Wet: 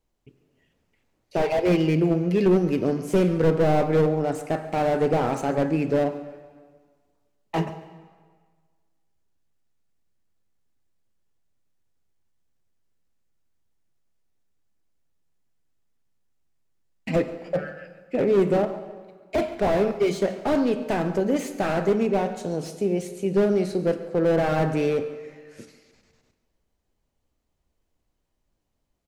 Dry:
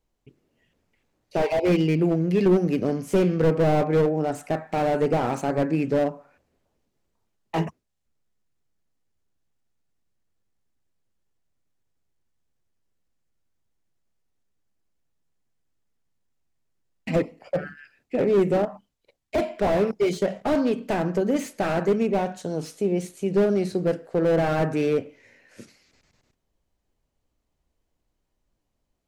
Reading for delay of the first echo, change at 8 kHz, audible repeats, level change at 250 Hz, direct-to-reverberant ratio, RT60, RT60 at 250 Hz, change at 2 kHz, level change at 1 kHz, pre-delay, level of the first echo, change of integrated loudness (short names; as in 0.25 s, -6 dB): 0.14 s, +0.5 dB, 1, 0.0 dB, 10.5 dB, 1.6 s, 1.6 s, +0.5 dB, +0.5 dB, 9 ms, -18.5 dB, 0.0 dB